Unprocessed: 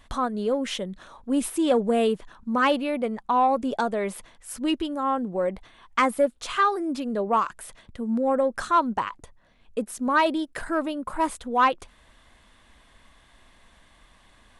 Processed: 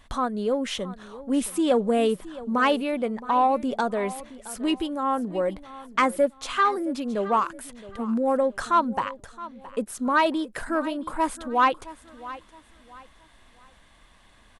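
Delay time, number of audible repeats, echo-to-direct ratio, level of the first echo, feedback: 669 ms, 2, -16.5 dB, -17.0 dB, 32%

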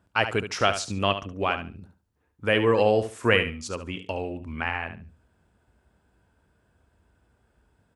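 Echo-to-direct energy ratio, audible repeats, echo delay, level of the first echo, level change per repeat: -10.0 dB, 2, 71 ms, -10.0 dB, -14.0 dB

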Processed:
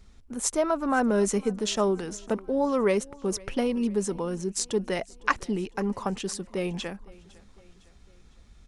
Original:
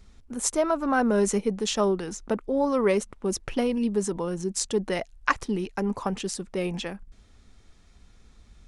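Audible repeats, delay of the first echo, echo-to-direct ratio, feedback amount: 3, 506 ms, -21.5 dB, 52%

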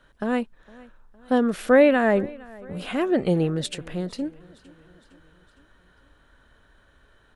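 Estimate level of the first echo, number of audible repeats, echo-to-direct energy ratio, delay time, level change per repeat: -23.0 dB, 3, -21.5 dB, 460 ms, -5.0 dB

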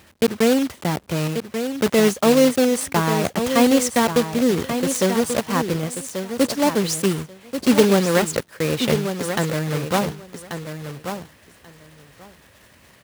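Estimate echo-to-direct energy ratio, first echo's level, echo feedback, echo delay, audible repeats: -8.5 dB, -8.5 dB, 15%, 1136 ms, 2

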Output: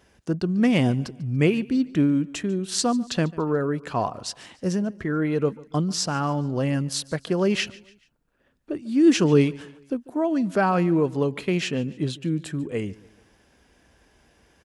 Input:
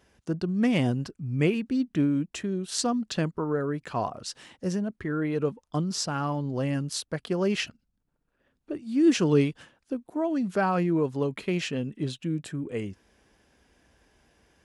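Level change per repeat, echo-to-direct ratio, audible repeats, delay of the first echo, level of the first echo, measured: -7.5 dB, -20.5 dB, 2, 144 ms, -21.5 dB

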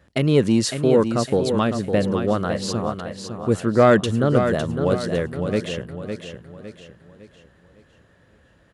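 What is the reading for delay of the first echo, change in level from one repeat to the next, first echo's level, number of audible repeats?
557 ms, -8.0 dB, -7.5 dB, 4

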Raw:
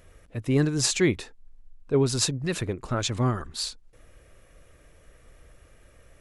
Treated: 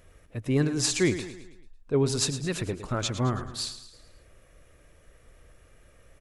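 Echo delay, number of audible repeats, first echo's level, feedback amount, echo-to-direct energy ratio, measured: 109 ms, 4, -12.0 dB, 48%, -11.0 dB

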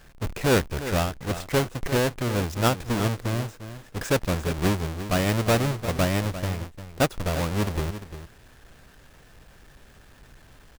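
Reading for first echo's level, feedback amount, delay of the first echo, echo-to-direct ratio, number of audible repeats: -12.0 dB, no regular repeats, 349 ms, -12.0 dB, 1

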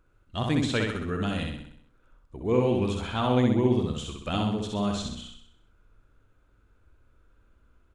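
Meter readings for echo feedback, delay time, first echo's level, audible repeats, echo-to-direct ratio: 52%, 64 ms, -3.0 dB, 6, -1.5 dB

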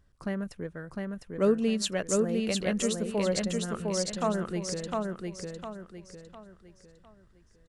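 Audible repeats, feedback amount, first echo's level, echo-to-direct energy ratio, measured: 4, 36%, -3.0 dB, -2.5 dB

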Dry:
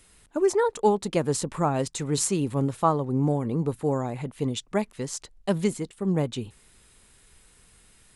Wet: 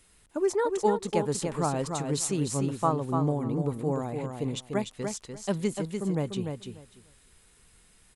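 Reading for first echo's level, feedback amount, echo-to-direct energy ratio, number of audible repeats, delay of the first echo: -5.5 dB, 17%, -5.5 dB, 2, 295 ms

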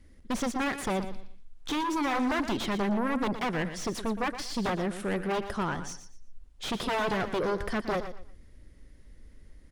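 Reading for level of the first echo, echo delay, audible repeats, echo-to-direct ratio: -11.0 dB, 118 ms, 2, -10.5 dB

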